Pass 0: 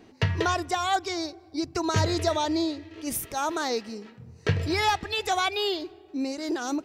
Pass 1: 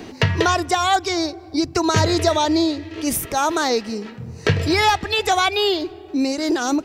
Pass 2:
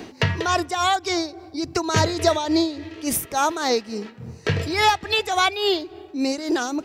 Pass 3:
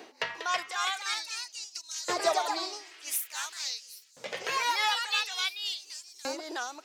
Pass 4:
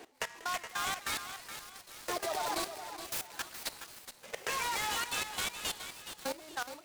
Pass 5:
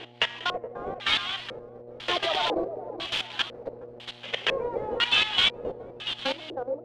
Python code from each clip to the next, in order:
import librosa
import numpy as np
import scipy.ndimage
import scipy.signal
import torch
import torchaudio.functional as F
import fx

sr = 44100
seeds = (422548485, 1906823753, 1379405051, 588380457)

y1 = fx.band_squash(x, sr, depth_pct=40)
y1 = y1 * 10.0 ** (8.0 / 20.0)
y2 = fx.low_shelf(y1, sr, hz=100.0, db=-5.5)
y2 = y2 * (1.0 - 0.62 / 2.0 + 0.62 / 2.0 * np.cos(2.0 * np.pi * 3.5 * (np.arange(len(y2)) / sr)))
y3 = fx.echo_pitch(y2, sr, ms=348, semitones=2, count=2, db_per_echo=-3.0)
y3 = fx.echo_wet_highpass(y3, sr, ms=775, feedback_pct=72, hz=5300.0, wet_db=-19.5)
y3 = fx.filter_lfo_highpass(y3, sr, shape='saw_up', hz=0.48, low_hz=480.0, high_hz=6300.0, q=0.96)
y3 = y3 * 10.0 ** (-8.5 / 20.0)
y4 = fx.level_steps(y3, sr, step_db=17)
y4 = fx.echo_feedback(y4, sr, ms=420, feedback_pct=35, wet_db=-10.0)
y4 = fx.noise_mod_delay(y4, sr, seeds[0], noise_hz=3900.0, depth_ms=0.043)
y5 = fx.dmg_buzz(y4, sr, base_hz=120.0, harmonics=7, level_db=-60.0, tilt_db=-2, odd_only=False)
y5 = fx.filter_lfo_lowpass(y5, sr, shape='square', hz=1.0, low_hz=500.0, high_hz=3200.0, q=5.6)
y5 = y5 * 10.0 ** (6.5 / 20.0)